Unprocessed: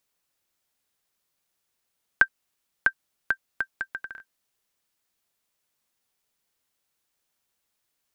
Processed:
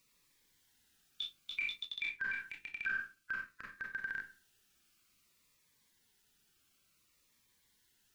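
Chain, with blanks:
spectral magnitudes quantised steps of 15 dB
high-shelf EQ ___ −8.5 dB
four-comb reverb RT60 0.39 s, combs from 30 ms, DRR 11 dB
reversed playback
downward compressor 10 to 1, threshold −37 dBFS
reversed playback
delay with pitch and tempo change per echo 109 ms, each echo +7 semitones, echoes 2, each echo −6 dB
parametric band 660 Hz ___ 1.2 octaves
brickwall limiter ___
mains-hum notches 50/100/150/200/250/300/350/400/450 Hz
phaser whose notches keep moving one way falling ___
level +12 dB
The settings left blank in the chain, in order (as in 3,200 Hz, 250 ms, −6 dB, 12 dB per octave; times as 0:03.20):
4,600 Hz, −11 dB, −39 dBFS, 0.56 Hz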